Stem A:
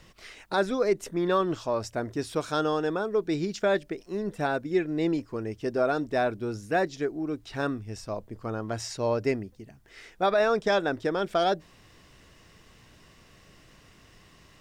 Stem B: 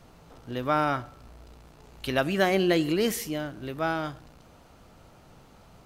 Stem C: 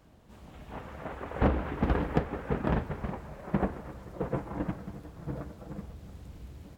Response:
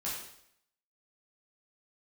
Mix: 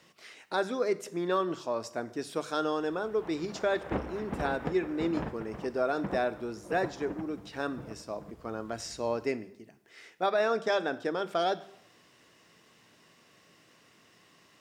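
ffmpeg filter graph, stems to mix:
-filter_complex "[0:a]highpass=140,bandreject=frequency=50:width_type=h:width=6,bandreject=frequency=100:width_type=h:width=6,bandreject=frequency=150:width_type=h:width=6,bandreject=frequency=200:width_type=h:width=6,volume=-4.5dB,asplit=2[link_01][link_02];[link_02]volume=-15dB[link_03];[2:a]adelay=2500,volume=-6dB[link_04];[3:a]atrim=start_sample=2205[link_05];[link_03][link_05]afir=irnorm=-1:irlink=0[link_06];[link_01][link_04][link_06]amix=inputs=3:normalize=0,lowshelf=frequency=80:gain=-12"

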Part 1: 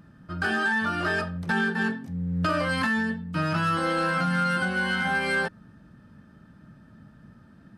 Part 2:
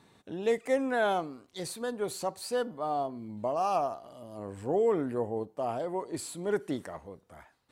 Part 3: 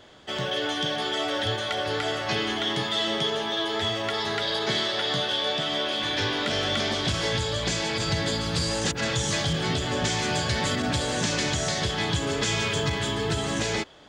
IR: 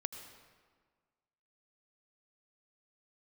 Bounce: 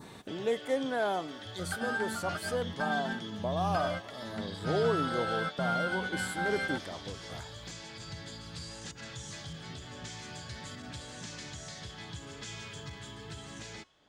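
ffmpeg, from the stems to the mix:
-filter_complex "[0:a]aecho=1:1:1.4:0.65,adelay=1300,volume=-9.5dB[link_01];[1:a]acompressor=mode=upward:threshold=-32dB:ratio=2.5,volume=-3dB,asplit=2[link_02][link_03];[2:a]bandreject=frequency=365.7:width_type=h:width=4,bandreject=frequency=731.4:width_type=h:width=4,bandreject=frequency=1097.1:width_type=h:width=4,bandreject=frequency=1462.8:width_type=h:width=4,bandreject=frequency=1828.5:width_type=h:width=4,bandreject=frequency=2194.2:width_type=h:width=4,bandreject=frequency=2559.9:width_type=h:width=4,bandreject=frequency=2925.6:width_type=h:width=4,bandreject=frequency=3291.3:width_type=h:width=4,bandreject=frequency=3657:width_type=h:width=4,bandreject=frequency=4022.7:width_type=h:width=4,bandreject=frequency=4388.4:width_type=h:width=4,bandreject=frequency=4754.1:width_type=h:width=4,bandreject=frequency=5119.8:width_type=h:width=4,bandreject=frequency=5485.5:width_type=h:width=4,bandreject=frequency=5851.2:width_type=h:width=4,bandreject=frequency=6216.9:width_type=h:width=4,bandreject=frequency=6582.6:width_type=h:width=4,bandreject=frequency=6948.3:width_type=h:width=4,bandreject=frequency=7314:width_type=h:width=4,bandreject=frequency=7679.7:width_type=h:width=4,bandreject=frequency=8045.4:width_type=h:width=4,bandreject=frequency=8411.1:width_type=h:width=4,bandreject=frequency=8776.8:width_type=h:width=4,bandreject=frequency=9142.5:width_type=h:width=4,bandreject=frequency=9508.2:width_type=h:width=4,bandreject=frequency=9873.9:width_type=h:width=4,adynamicequalizer=threshold=0.00708:dfrequency=480:dqfactor=0.78:tfrequency=480:tqfactor=0.78:attack=5:release=100:ratio=0.375:range=3:mode=cutabove:tftype=bell,volume=-15.5dB[link_04];[link_03]apad=whole_len=400451[link_05];[link_01][link_05]sidechaingate=range=-33dB:threshold=-41dB:ratio=16:detection=peak[link_06];[link_06][link_02][link_04]amix=inputs=3:normalize=0,adynamicequalizer=threshold=0.00282:dfrequency=2700:dqfactor=1.3:tfrequency=2700:tqfactor=1.3:attack=5:release=100:ratio=0.375:range=2:mode=cutabove:tftype=bell"

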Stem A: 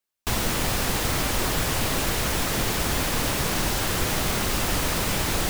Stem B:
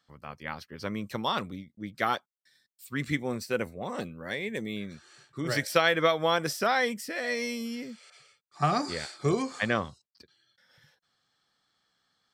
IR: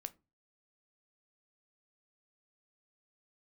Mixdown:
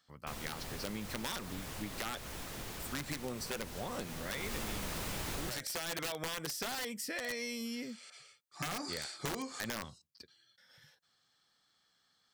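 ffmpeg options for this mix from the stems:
-filter_complex "[0:a]volume=-6dB,afade=type=in:start_time=4.28:duration=0.31:silence=0.223872[link_01];[1:a]highshelf=frequency=3000:gain=6,alimiter=limit=-17.5dB:level=0:latency=1:release=57,aeval=exprs='(mod(10.6*val(0)+1,2)-1)/10.6':channel_layout=same,volume=-4dB,asplit=2[link_02][link_03];[link_03]volume=-12dB[link_04];[2:a]atrim=start_sample=2205[link_05];[link_04][link_05]afir=irnorm=-1:irlink=0[link_06];[link_01][link_02][link_06]amix=inputs=3:normalize=0,acompressor=threshold=-36dB:ratio=6"

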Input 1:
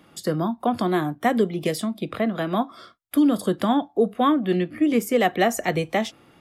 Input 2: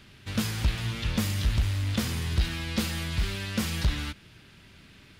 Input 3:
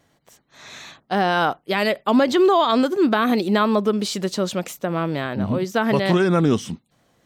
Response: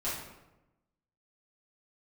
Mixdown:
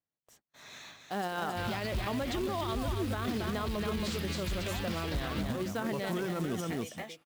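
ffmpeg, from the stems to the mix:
-filter_complex "[0:a]acompressor=threshold=-23dB:ratio=6,highpass=frequency=750:poles=1,adelay=1050,volume=-11.5dB,asplit=2[link_01][link_02];[link_02]volume=-4.5dB[link_03];[1:a]lowpass=frequency=5100:width=0.5412,lowpass=frequency=5100:width=1.3066,adelay=1300,volume=-2.5dB,asplit=2[link_04][link_05];[link_05]volume=-11.5dB[link_06];[2:a]agate=range=-26dB:threshold=-53dB:ratio=16:detection=peak,volume=-9.5dB,asplit=2[link_07][link_08];[link_08]volume=-6.5dB[link_09];[link_03][link_06][link_09]amix=inputs=3:normalize=0,aecho=0:1:275:1[link_10];[link_01][link_04][link_07][link_10]amix=inputs=4:normalize=0,acrusher=bits=4:mode=log:mix=0:aa=0.000001,alimiter=level_in=1.5dB:limit=-24dB:level=0:latency=1:release=54,volume=-1.5dB"

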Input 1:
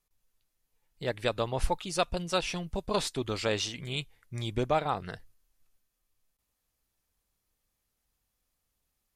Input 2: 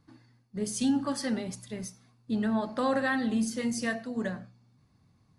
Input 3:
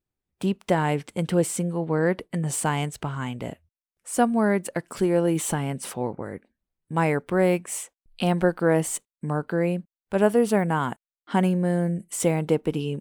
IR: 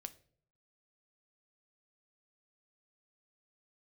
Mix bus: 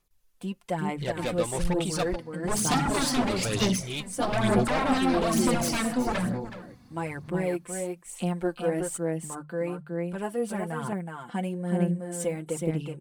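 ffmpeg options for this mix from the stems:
-filter_complex "[0:a]acontrast=66,asoftclip=type=tanh:threshold=-21.5dB,volume=-4dB,asplit=3[link_01][link_02][link_03];[link_01]atrim=end=2.16,asetpts=PTS-STARTPTS,afade=type=out:start_time=2.156:duration=0.004:curve=hsin[link_04];[link_02]atrim=start=2.16:end=2.87,asetpts=PTS-STARTPTS,volume=0[link_05];[link_03]atrim=start=2.87,asetpts=PTS-STARTPTS,afade=type=in:duration=0.004:curve=hsin[link_06];[link_04][link_05][link_06]concat=n=3:v=0:a=1[link_07];[1:a]acrossover=split=390[link_08][link_09];[link_09]acompressor=threshold=-35dB:ratio=6[link_10];[link_08][link_10]amix=inputs=2:normalize=0,aeval=exprs='0.126*sin(PI/2*5.01*val(0)/0.126)':channel_layout=same,adelay=1900,volume=-7dB,asplit=2[link_11][link_12];[link_12]volume=-13.5dB[link_13];[2:a]equalizer=frequency=8600:width_type=o:width=0.39:gain=5,bandreject=frequency=50:width_type=h:width=6,bandreject=frequency=100:width_type=h:width=6,bandreject=frequency=150:width_type=h:width=6,aecho=1:1:5.8:0.62,volume=-12dB,asplit=2[link_14][link_15];[link_15]volume=-4.5dB[link_16];[link_13][link_16]amix=inputs=2:normalize=0,aecho=0:1:371:1[link_17];[link_07][link_11][link_14][link_17]amix=inputs=4:normalize=0,aphaser=in_gain=1:out_gain=1:delay=4.1:decay=0.47:speed=1.1:type=sinusoidal"

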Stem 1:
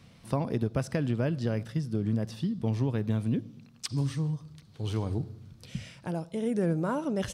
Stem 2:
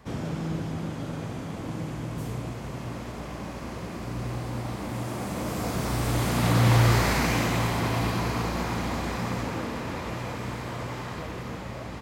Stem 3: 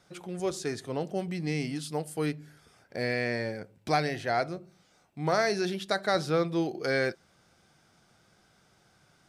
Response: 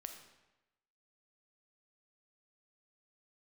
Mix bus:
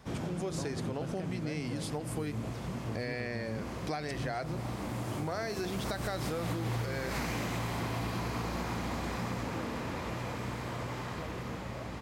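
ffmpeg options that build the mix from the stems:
-filter_complex "[0:a]adelay=250,volume=-11dB[link_01];[1:a]volume=-3.5dB[link_02];[2:a]acompressor=threshold=-32dB:ratio=2,volume=-0.5dB,asplit=2[link_03][link_04];[link_04]apad=whole_len=529796[link_05];[link_02][link_05]sidechaincompress=threshold=-35dB:ratio=8:attack=6.6:release=173[link_06];[link_01][link_06][link_03]amix=inputs=3:normalize=0,acompressor=threshold=-31dB:ratio=6"

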